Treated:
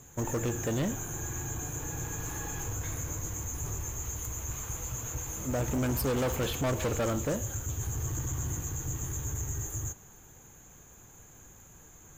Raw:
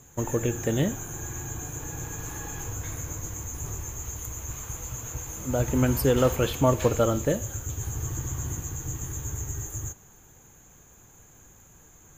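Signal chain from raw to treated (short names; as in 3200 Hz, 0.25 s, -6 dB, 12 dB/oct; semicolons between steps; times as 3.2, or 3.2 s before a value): soft clip -26 dBFS, distortion -7 dB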